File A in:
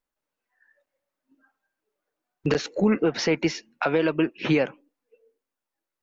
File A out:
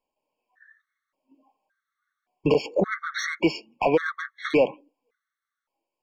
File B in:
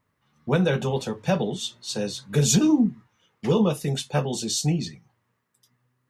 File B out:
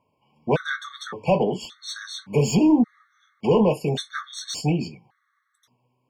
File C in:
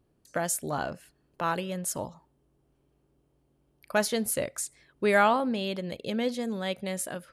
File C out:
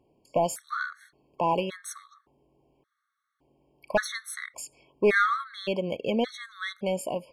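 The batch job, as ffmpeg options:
-filter_complex "[0:a]asplit=2[link_01][link_02];[link_02]highpass=frequency=720:poles=1,volume=16dB,asoftclip=type=tanh:threshold=-9dB[link_03];[link_01][link_03]amix=inputs=2:normalize=0,lowpass=frequency=1400:poles=1,volume=-6dB,afftfilt=real='re*gt(sin(2*PI*0.88*pts/sr)*(1-2*mod(floor(b*sr/1024/1100),2)),0)':imag='im*gt(sin(2*PI*0.88*pts/sr)*(1-2*mod(floor(b*sr/1024/1100),2)),0)':win_size=1024:overlap=0.75,volume=1.5dB"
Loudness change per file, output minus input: −0.5, +0.5, +0.5 LU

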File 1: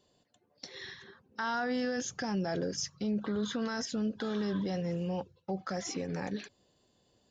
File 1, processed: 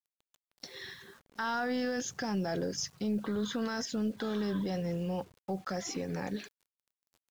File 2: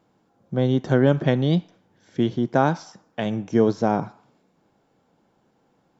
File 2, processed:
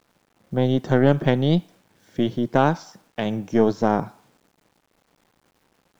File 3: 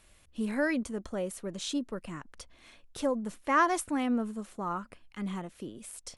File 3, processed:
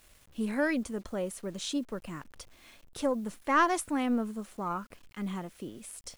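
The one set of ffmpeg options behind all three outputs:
-af "aeval=exprs='0.596*(cos(1*acos(clip(val(0)/0.596,-1,1)))-cos(1*PI/2))+0.0596*(cos(4*acos(clip(val(0)/0.596,-1,1)))-cos(4*PI/2))':channel_layout=same,acrusher=bits=9:mix=0:aa=0.000001"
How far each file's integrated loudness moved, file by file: 0.0, +0.5, 0.0 LU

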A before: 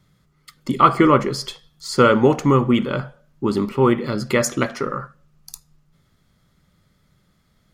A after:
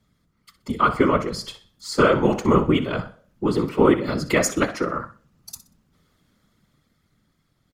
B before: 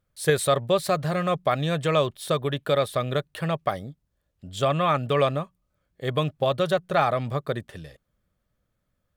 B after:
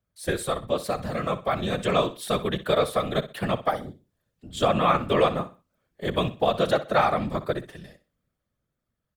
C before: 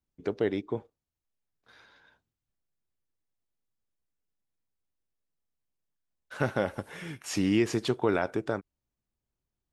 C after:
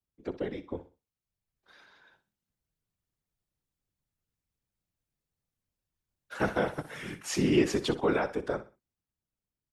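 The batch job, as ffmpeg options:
-filter_complex "[0:a]afftfilt=real='hypot(re,im)*cos(2*PI*random(0))':imag='hypot(re,im)*sin(2*PI*random(1))':win_size=512:overlap=0.75,acrossover=split=130[link_01][link_02];[link_02]dynaudnorm=framelen=280:gausssize=11:maxgain=7dB[link_03];[link_01][link_03]amix=inputs=2:normalize=0,aecho=1:1:62|124|186:0.188|0.0527|0.0148"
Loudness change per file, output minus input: −2.5, −0.5, 0.0 LU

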